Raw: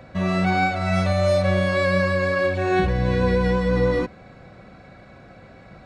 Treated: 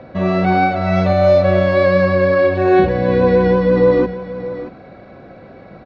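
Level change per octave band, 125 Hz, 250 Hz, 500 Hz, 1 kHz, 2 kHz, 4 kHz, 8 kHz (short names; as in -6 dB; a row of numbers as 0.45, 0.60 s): +3.5 dB, +6.5 dB, +9.5 dB, +7.0 dB, +2.5 dB, +0.5 dB, n/a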